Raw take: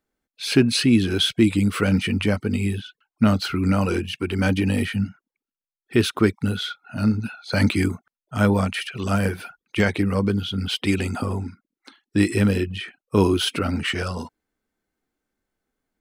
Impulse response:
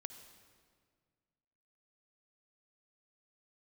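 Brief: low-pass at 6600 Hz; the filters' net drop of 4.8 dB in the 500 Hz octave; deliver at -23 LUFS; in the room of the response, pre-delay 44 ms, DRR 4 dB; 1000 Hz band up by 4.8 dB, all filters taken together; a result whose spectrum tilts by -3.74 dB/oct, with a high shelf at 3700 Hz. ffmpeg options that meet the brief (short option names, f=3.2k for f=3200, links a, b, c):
-filter_complex "[0:a]lowpass=6.6k,equalizer=f=500:t=o:g=-8.5,equalizer=f=1k:t=o:g=7.5,highshelf=f=3.7k:g=8.5,asplit=2[a][b];[1:a]atrim=start_sample=2205,adelay=44[c];[b][c]afir=irnorm=-1:irlink=0,volume=0dB[d];[a][d]amix=inputs=2:normalize=0,volume=-2dB"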